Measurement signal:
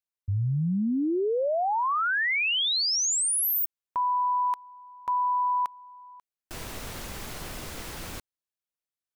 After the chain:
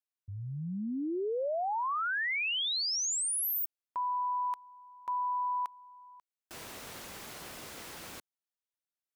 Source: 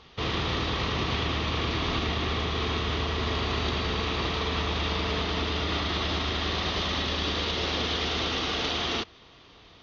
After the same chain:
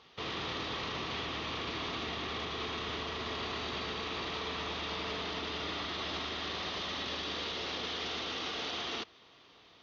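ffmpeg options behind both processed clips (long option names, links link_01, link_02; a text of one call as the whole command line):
ffmpeg -i in.wav -af "highpass=frequency=260:poles=1,alimiter=limit=-23.5dB:level=0:latency=1:release=10,volume=-5.5dB" out.wav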